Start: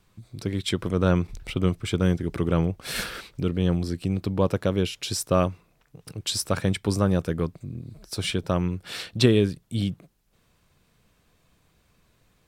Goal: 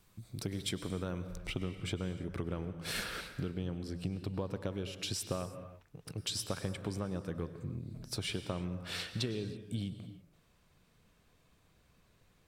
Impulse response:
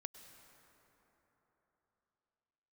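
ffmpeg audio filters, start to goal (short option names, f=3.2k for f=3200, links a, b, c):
-filter_complex "[0:a]asetnsamples=n=441:p=0,asendcmd='1.37 highshelf g -3',highshelf=f=7.8k:g=9.5,acompressor=threshold=-29dB:ratio=10[a];[1:a]atrim=start_sample=2205,afade=t=out:st=0.39:d=0.01,atrim=end_sample=17640[b];[a][b]afir=irnorm=-1:irlink=0,volume=1dB"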